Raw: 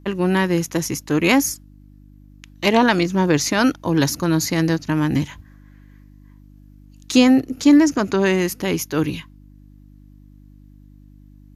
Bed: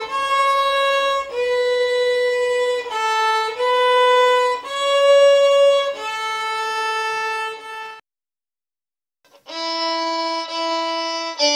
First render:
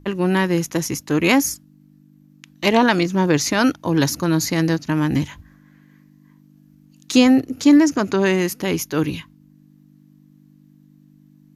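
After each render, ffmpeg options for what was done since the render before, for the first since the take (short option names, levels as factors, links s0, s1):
-af "bandreject=f=50:t=h:w=4,bandreject=f=100:t=h:w=4"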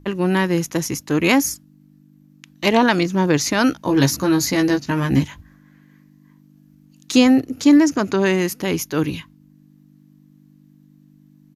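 -filter_complex "[0:a]asplit=3[s0][s1][s2];[s0]afade=t=out:st=3.71:d=0.02[s3];[s1]asplit=2[s4][s5];[s5]adelay=15,volume=0.708[s6];[s4][s6]amix=inputs=2:normalize=0,afade=t=in:st=3.71:d=0.02,afade=t=out:st=5.22:d=0.02[s7];[s2]afade=t=in:st=5.22:d=0.02[s8];[s3][s7][s8]amix=inputs=3:normalize=0"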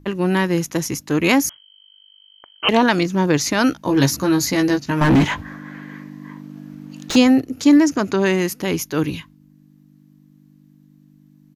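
-filter_complex "[0:a]asettb=1/sr,asplit=3[s0][s1][s2];[s0]atrim=end=1.494[s3];[s1]atrim=start=1.49:end=2.69,asetpts=PTS-STARTPTS,afade=t=in:d=0.004:c=qsin,afade=t=out:st=1.196:d=0.004:c=qsin,lowpass=f=2800:t=q:w=0.5098,lowpass=f=2800:t=q:w=0.6013,lowpass=f=2800:t=q:w=0.9,lowpass=f=2800:t=q:w=2.563,afreqshift=-3300[s4];[s2]atrim=start=2.686[s5];[s3][s4]acrossfade=d=0.004:c1=hsin:c2=qsin[s6];[s6][s5]acrossfade=d=0.004:c1=qsin:c2=hsin,asettb=1/sr,asplit=3[s7][s8][s9];[s7]atrim=end=5.014[s10];[s8]atrim=start=5.01:end=7.16,asetpts=PTS-STARTPTS,afade=t=in:d=0.004:c=qsin,afade=t=out:st=2.146:d=0.004:c=qsin,asplit=2[s11][s12];[s12]highpass=f=720:p=1,volume=39.8,asoftclip=type=tanh:threshold=0.531[s13];[s11][s13]amix=inputs=2:normalize=0,lowpass=f=1100:p=1,volume=0.501[s14];[s9]atrim=start=7.156[s15];[s10][s14]acrossfade=d=0.004:c1=hsin:c2=qsin[s16];[s16][s15]acrossfade=d=0.004:c1=qsin:c2=hsin"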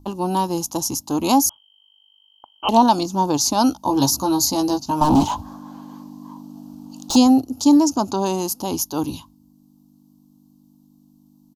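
-af "firequalizer=gain_entry='entry(100,0);entry(160,-10);entry(230,1);entry(450,-8);entry(850,9);entry(1900,-30);entry(2800,-8);entry(4500,3);entry(11000,5)':delay=0.05:min_phase=1"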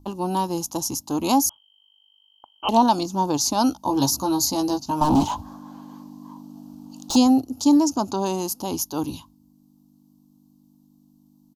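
-af "volume=0.708"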